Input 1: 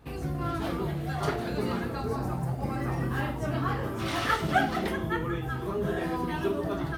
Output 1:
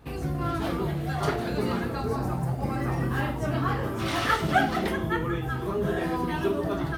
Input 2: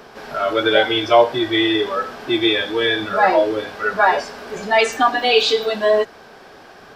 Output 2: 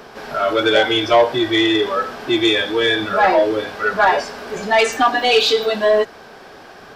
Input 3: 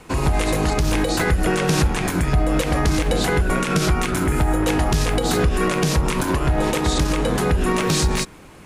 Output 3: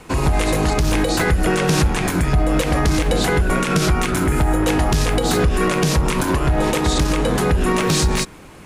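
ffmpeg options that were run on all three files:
-af "acontrast=67,volume=-4dB"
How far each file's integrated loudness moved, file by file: +2.5, +1.0, +2.0 LU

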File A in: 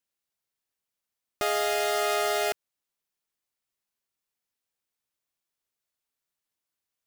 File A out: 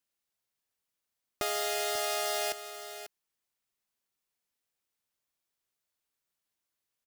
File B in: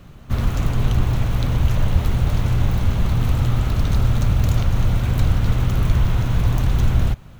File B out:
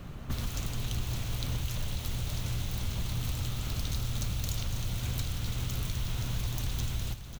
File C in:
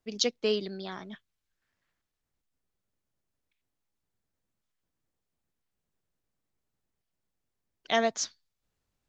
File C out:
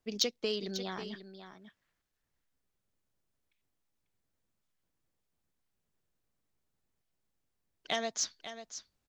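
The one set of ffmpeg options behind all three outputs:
-filter_complex "[0:a]acrossover=split=3200[link_01][link_02];[link_01]acompressor=threshold=-31dB:ratio=6[link_03];[link_03][link_02]amix=inputs=2:normalize=0,asoftclip=type=tanh:threshold=-17dB,aecho=1:1:543:0.266"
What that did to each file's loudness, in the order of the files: −5.5, −14.0, −5.5 LU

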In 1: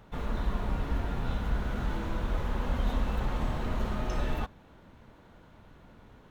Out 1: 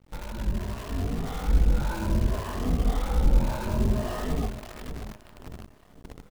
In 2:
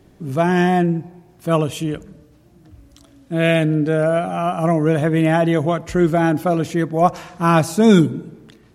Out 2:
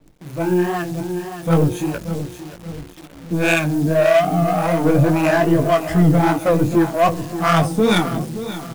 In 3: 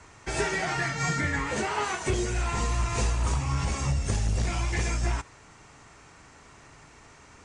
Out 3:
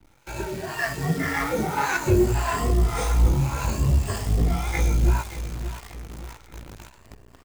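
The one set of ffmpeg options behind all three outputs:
-filter_complex "[0:a]afftfilt=real='re*pow(10,14/40*sin(2*PI*(1.4*log(max(b,1)*sr/1024/100)/log(2)-(0.63)*(pts-256)/sr)))':imag='im*pow(10,14/40*sin(2*PI*(1.4*log(max(b,1)*sr/1024/100)/log(2)-(0.63)*(pts-256)/sr)))':win_size=1024:overlap=0.75,highshelf=frequency=8100:gain=-7.5,bandreject=frequency=5700:width=6.5,acrossover=split=1900[link_01][link_02];[link_01]asoftclip=type=tanh:threshold=-15dB[link_03];[link_03][link_02]amix=inputs=2:normalize=0,flanger=delay=17.5:depth=5.2:speed=2.5,aecho=1:1:578|1156|1734|2312|2890:0.282|0.127|0.0571|0.0257|0.0116,dynaudnorm=framelen=220:gausssize=9:maxgain=6dB,acrossover=split=560[link_04][link_05];[link_04]aeval=exprs='val(0)*(1-0.7/2+0.7/2*cos(2*PI*1.8*n/s))':channel_layout=same[link_06];[link_05]aeval=exprs='val(0)*(1-0.7/2-0.7/2*cos(2*PI*1.8*n/s))':channel_layout=same[link_07];[link_06][link_07]amix=inputs=2:normalize=0,asplit=2[link_08][link_09];[link_09]adynamicsmooth=sensitivity=1.5:basefreq=740,volume=2dB[link_10];[link_08][link_10]amix=inputs=2:normalize=0,acrusher=bits=7:dc=4:mix=0:aa=0.000001,adynamicequalizer=threshold=0.0141:dfrequency=4100:dqfactor=0.7:tfrequency=4100:tqfactor=0.7:attack=5:release=100:ratio=0.375:range=2.5:mode=boostabove:tftype=highshelf,volume=-3dB"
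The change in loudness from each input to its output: +5.0, 0.0, +4.0 LU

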